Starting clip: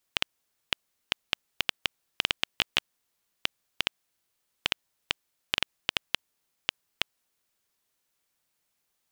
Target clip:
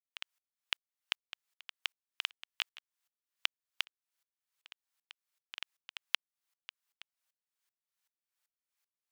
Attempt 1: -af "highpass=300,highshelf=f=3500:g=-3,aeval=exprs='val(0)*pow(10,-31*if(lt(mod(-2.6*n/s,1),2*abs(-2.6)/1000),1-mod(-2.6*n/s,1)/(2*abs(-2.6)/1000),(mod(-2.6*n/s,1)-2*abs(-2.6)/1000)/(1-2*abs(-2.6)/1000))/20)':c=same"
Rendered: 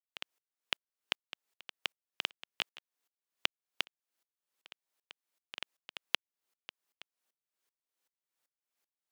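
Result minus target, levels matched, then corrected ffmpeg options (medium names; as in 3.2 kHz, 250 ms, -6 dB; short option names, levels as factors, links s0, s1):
250 Hz band +17.5 dB
-af "highpass=1000,highshelf=f=3500:g=-3,aeval=exprs='val(0)*pow(10,-31*if(lt(mod(-2.6*n/s,1),2*abs(-2.6)/1000),1-mod(-2.6*n/s,1)/(2*abs(-2.6)/1000),(mod(-2.6*n/s,1)-2*abs(-2.6)/1000)/(1-2*abs(-2.6)/1000))/20)':c=same"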